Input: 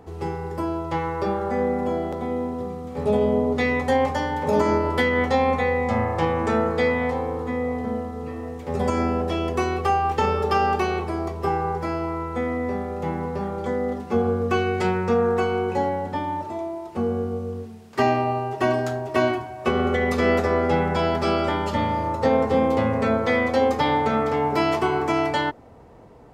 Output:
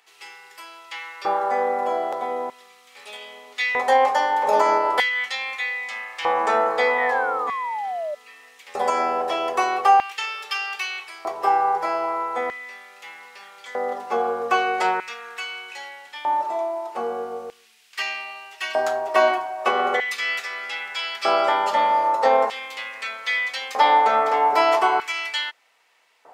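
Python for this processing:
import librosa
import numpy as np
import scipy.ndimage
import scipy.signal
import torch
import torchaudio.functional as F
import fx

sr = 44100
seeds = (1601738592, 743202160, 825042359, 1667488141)

y = fx.filter_lfo_highpass(x, sr, shape='square', hz=0.4, low_hz=740.0, high_hz=2500.0, q=1.5)
y = fx.spec_paint(y, sr, seeds[0], shape='fall', start_s=6.96, length_s=1.19, low_hz=580.0, high_hz=2000.0, level_db=-31.0)
y = y * librosa.db_to_amplitude(3.5)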